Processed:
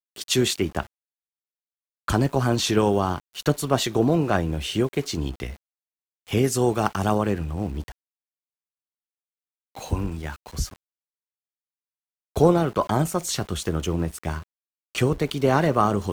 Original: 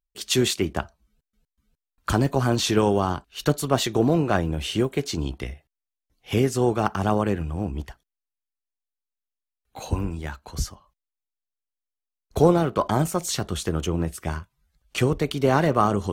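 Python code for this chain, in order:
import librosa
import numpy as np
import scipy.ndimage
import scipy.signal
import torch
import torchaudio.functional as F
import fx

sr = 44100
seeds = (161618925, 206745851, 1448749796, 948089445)

y = fx.high_shelf(x, sr, hz=5100.0, db=8.5, at=(6.44, 7.18))
y = np.where(np.abs(y) >= 10.0 ** (-41.5 / 20.0), y, 0.0)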